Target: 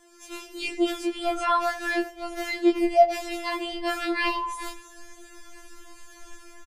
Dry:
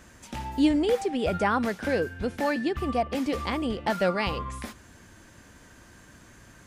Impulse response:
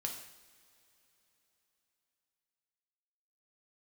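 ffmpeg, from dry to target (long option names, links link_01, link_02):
-filter_complex "[0:a]afftfilt=real='re':imag='-im':win_size=2048:overlap=0.75,dynaudnorm=framelen=110:gausssize=5:maxgain=9dB,asubboost=boost=7:cutoff=75,asplit=2[link_01][link_02];[link_02]adelay=90,lowpass=frequency=1400:poles=1,volume=-13dB,asplit=2[link_03][link_04];[link_04]adelay=90,lowpass=frequency=1400:poles=1,volume=0.45,asplit=2[link_05][link_06];[link_06]adelay=90,lowpass=frequency=1400:poles=1,volume=0.45,asplit=2[link_07][link_08];[link_08]adelay=90,lowpass=frequency=1400:poles=1,volume=0.45[link_09];[link_01][link_03][link_05][link_07][link_09]amix=inputs=5:normalize=0,afftfilt=real='re*4*eq(mod(b,16),0)':imag='im*4*eq(mod(b,16),0)':win_size=2048:overlap=0.75"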